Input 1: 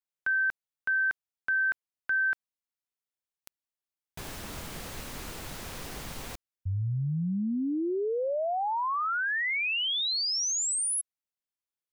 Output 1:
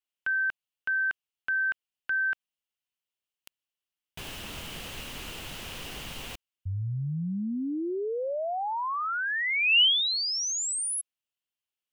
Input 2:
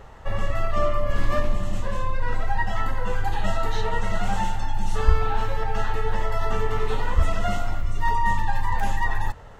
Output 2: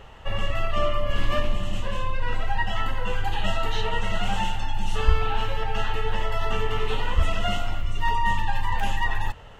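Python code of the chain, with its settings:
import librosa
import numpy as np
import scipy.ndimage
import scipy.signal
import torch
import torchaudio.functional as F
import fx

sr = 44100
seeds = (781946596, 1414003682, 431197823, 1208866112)

y = fx.peak_eq(x, sr, hz=2900.0, db=12.0, octaves=0.49)
y = F.gain(torch.from_numpy(y), -1.5).numpy()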